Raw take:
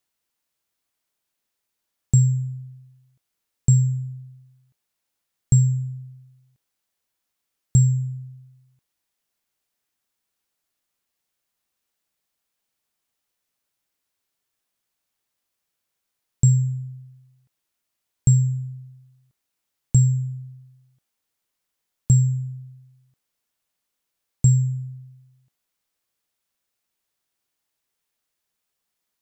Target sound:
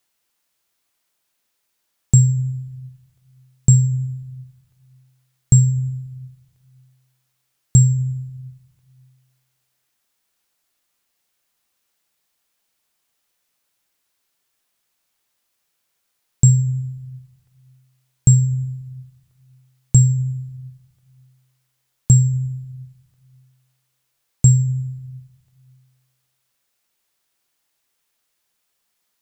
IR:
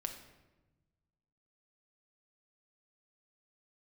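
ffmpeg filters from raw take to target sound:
-filter_complex "[0:a]asplit=2[link_01][link_02];[1:a]atrim=start_sample=2205,lowshelf=frequency=400:gain=-9.5[link_03];[link_02][link_03]afir=irnorm=-1:irlink=0,volume=1dB[link_04];[link_01][link_04]amix=inputs=2:normalize=0,volume=2dB"

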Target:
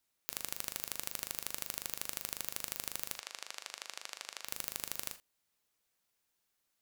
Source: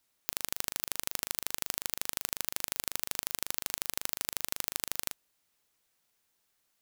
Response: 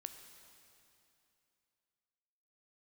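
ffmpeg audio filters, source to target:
-filter_complex "[0:a]asplit=3[link_01][link_02][link_03];[link_01]afade=type=out:start_time=3.12:duration=0.02[link_04];[link_02]highpass=590,lowpass=5900,afade=type=in:start_time=3.12:duration=0.02,afade=type=out:start_time=4.44:duration=0.02[link_05];[link_03]afade=type=in:start_time=4.44:duration=0.02[link_06];[link_04][link_05][link_06]amix=inputs=3:normalize=0[link_07];[1:a]atrim=start_sample=2205,atrim=end_sample=6174,asetrate=70560,aresample=44100[link_08];[link_07][link_08]afir=irnorm=-1:irlink=0,volume=4dB"

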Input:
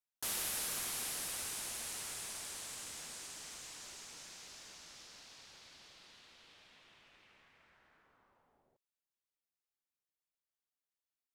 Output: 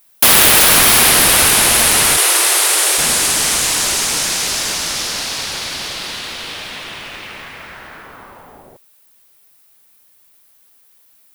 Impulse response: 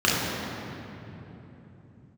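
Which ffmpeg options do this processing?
-filter_complex "[0:a]asplit=3[link_01][link_02][link_03];[link_01]afade=type=out:start_time=2.16:duration=0.02[link_04];[link_02]afreqshift=310,afade=type=in:start_time=2.16:duration=0.02,afade=type=out:start_time=2.97:duration=0.02[link_05];[link_03]afade=type=in:start_time=2.97:duration=0.02[link_06];[link_04][link_05][link_06]amix=inputs=3:normalize=0,acrossover=split=4500[link_07][link_08];[link_08]acompressor=threshold=-50dB:ratio=10[link_09];[link_07][link_09]amix=inputs=2:normalize=0,aeval=exprs='(mod(70.8*val(0)+1,2)-1)/70.8':channel_layout=same,aexciter=amount=2.9:drive=2.9:freq=9300,apsyclip=35.5dB,volume=-1.5dB"

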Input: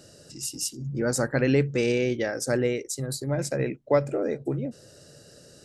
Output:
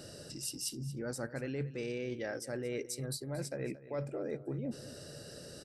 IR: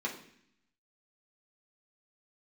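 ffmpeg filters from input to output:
-af "equalizer=frequency=6800:width=6.9:gain=-10,areverse,acompressor=threshold=-38dB:ratio=10,areverse,aecho=1:1:228:0.158,volume=2.5dB"

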